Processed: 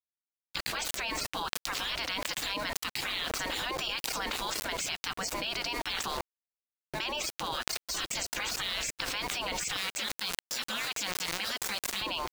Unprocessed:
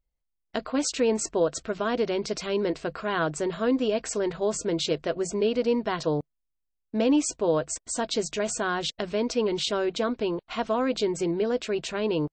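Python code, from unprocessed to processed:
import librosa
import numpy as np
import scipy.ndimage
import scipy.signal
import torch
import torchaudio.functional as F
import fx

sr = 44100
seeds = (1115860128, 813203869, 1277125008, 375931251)

y = fx.highpass(x, sr, hz=740.0, slope=12, at=(9.76, 12.02))
y = fx.spec_gate(y, sr, threshold_db=-20, keep='weak')
y = fx.high_shelf(y, sr, hz=4100.0, db=5.5)
y = np.where(np.abs(y) >= 10.0 ** (-49.5 / 20.0), y, 0.0)
y = fx.env_flatten(y, sr, amount_pct=100)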